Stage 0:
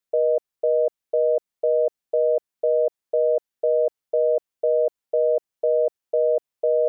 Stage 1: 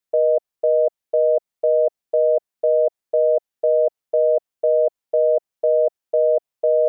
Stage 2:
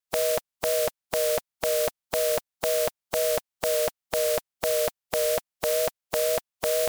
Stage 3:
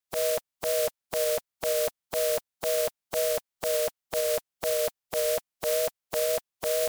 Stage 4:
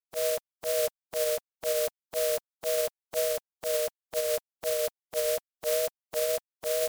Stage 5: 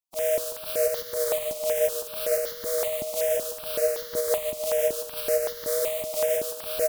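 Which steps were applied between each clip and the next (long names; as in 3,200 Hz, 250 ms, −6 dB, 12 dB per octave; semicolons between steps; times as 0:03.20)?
dynamic equaliser 680 Hz, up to +5 dB, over −33 dBFS, Q 2.2
compressing power law on the bin magnitudes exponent 0.33; parametric band 370 Hz −6.5 dB 1.1 octaves; tape wow and flutter 27 cents; level −4.5 dB
brickwall limiter −17 dBFS, peak gain reduction 8.5 dB
expander for the loud parts 2.5 to 1, over −36 dBFS
double-tracking delay 21 ms −11 dB; on a send: repeating echo 145 ms, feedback 55%, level −3 dB; on the sum: step-sequenced phaser 5.3 Hz 440–2,500 Hz; level +3 dB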